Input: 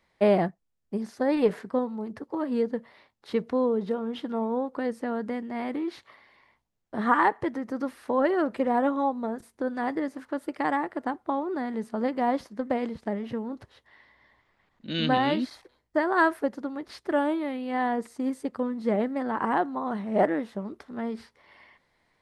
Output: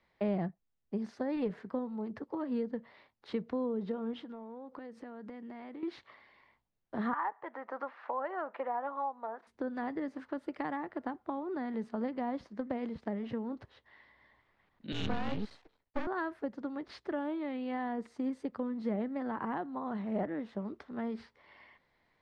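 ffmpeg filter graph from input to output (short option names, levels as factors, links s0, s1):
-filter_complex "[0:a]asettb=1/sr,asplit=3[s0][s1][s2];[s0]atrim=end=4.134[s3];[s1]atrim=start=4.13:end=5.83,asetpts=PTS-STARTPTS,afade=t=in:d=0.004:c=qsin,afade=t=out:st=1.696:d=0.004:c=qsin,highpass=51,acompressor=threshold=0.0126:ratio=12:attack=3.2:release=140:knee=1:detection=peak[s4];[s2]atrim=start=5.826[s5];[s3][s4]acrossfade=d=0.004:c1=hsin:c2=qsin[s6];[s6][s5]acrossfade=d=0.004:c1=qsin:c2=hsin,asettb=1/sr,asplit=3[s7][s8][s9];[s7]atrim=end=7.134[s10];[s8]atrim=start=7.13:end=9.47,asetpts=PTS-STARTPTS,afade=t=in:d=0.004:c=qsin,afade=t=out:st=2.336:d=0.004:c=qsin,highpass=690,lowpass=2500,equalizer=f=880:t=o:w=1.9:g=10[s11];[s9]atrim=start=9.466[s12];[s10][s11]acrossfade=d=0.004:c1=hsin:c2=qsin[s13];[s13][s12]acrossfade=d=0.004:c1=qsin:c2=hsin,asettb=1/sr,asplit=3[s14][s15][s16];[s14]atrim=end=14.924[s17];[s15]atrim=start=14.92:end=16.07,asetpts=PTS-STARTPTS,afade=t=in:d=0.004:c=qsin,afade=t=out:st=1.146:d=0.004:c=qsin,afreqshift=-45,aeval=exprs='max(val(0),0)':c=same[s18];[s16]atrim=start=16.066[s19];[s17][s18]acrossfade=d=0.004:c1=hsin:c2=qsin[s20];[s20][s19]acrossfade=d=0.004:c1=qsin:c2=hsin,lowpass=4400,acrossover=split=220[s21][s22];[s22]acompressor=threshold=0.0251:ratio=4[s23];[s21][s23]amix=inputs=2:normalize=0,volume=0.668"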